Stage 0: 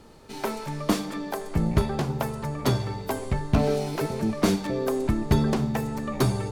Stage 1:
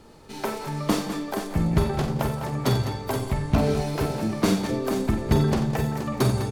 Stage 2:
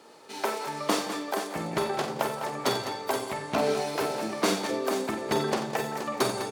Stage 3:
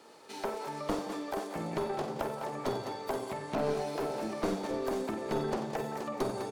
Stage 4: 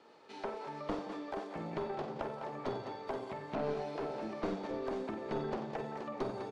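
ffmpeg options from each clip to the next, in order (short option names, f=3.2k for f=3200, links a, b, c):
-af "aecho=1:1:47|89|172|203|474:0.398|0.251|0.119|0.282|0.355"
-af "highpass=410,equalizer=f=12k:w=5.7:g=-7,volume=1.5dB"
-filter_complex "[0:a]acrossover=split=970[a][b];[a]aeval=exprs='clip(val(0),-1,0.0376)':c=same[c];[b]acompressor=threshold=-42dB:ratio=6[d];[c][d]amix=inputs=2:normalize=0,volume=-3dB"
-af "lowpass=3.9k,volume=-4.5dB"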